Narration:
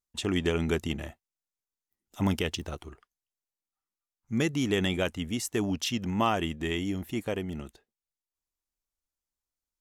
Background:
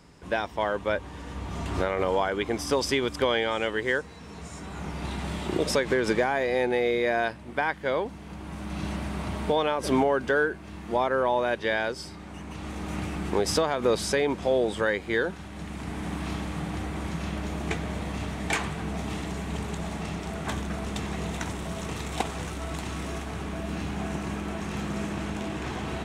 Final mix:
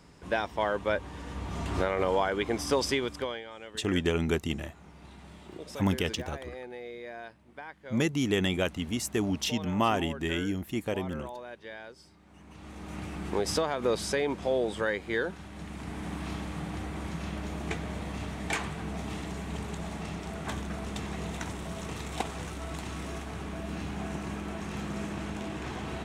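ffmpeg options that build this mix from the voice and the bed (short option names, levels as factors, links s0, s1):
-filter_complex "[0:a]adelay=3600,volume=1[s0];[1:a]volume=3.76,afade=t=out:st=2.83:d=0.6:silence=0.16788,afade=t=in:st=12.22:d=1.19:silence=0.223872[s1];[s0][s1]amix=inputs=2:normalize=0"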